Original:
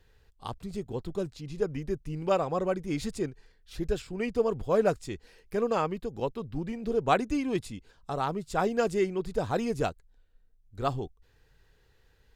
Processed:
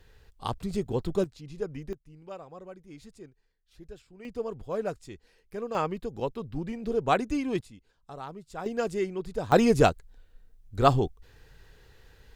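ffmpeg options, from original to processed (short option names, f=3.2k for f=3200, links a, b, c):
-af "asetnsamples=n=441:p=0,asendcmd='1.24 volume volume -4dB;1.93 volume volume -16dB;4.25 volume volume -7dB;5.75 volume volume 0dB;7.61 volume volume -10dB;8.66 volume volume -2.5dB;9.52 volume volume 9dB',volume=5.5dB"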